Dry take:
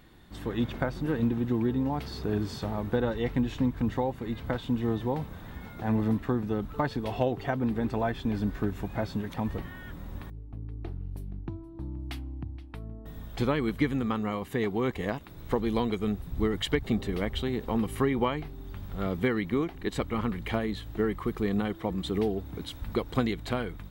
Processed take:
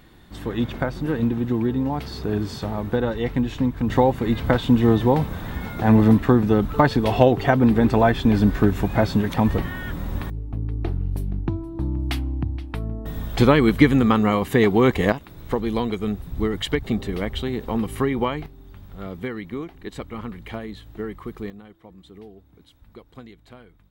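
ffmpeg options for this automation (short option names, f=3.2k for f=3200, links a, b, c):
-af "asetnsamples=n=441:p=0,asendcmd='3.9 volume volume 12dB;15.12 volume volume 4dB;18.46 volume volume -3dB;21.5 volume volume -15dB',volume=5dB"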